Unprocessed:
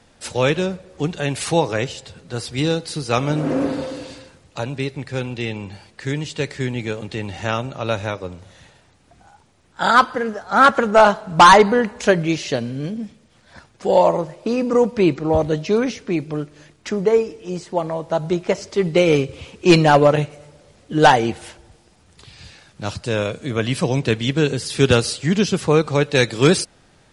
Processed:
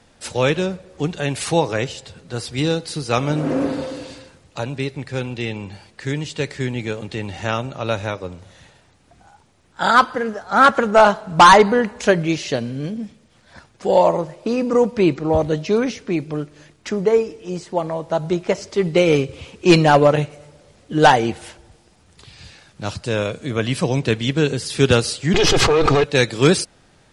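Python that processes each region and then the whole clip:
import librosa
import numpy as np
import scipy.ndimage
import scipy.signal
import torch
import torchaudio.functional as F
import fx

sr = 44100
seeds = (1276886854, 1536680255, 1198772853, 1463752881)

y = fx.chain(x, sr, fx.lower_of_two(delay_ms=2.4),
    fx.lowpass(hz=5200.0, slope=12),
    fx.env_flatten(amount_pct=100), at=(25.34, 26.04))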